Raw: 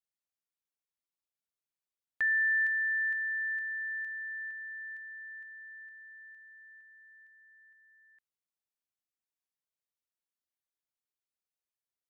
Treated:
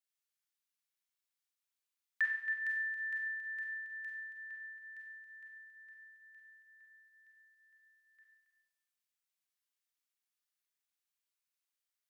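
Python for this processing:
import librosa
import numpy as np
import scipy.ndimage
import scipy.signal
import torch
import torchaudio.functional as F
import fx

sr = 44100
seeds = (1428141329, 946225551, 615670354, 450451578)

y = scipy.signal.sosfilt(scipy.signal.butter(2, 1300.0, 'highpass', fs=sr, output='sos'), x)
y = y + 10.0 ** (-10.5 / 20.0) * np.pad(y, (int(275 * sr / 1000.0), 0))[:len(y)]
y = fx.rev_schroeder(y, sr, rt60_s=0.8, comb_ms=31, drr_db=-0.5)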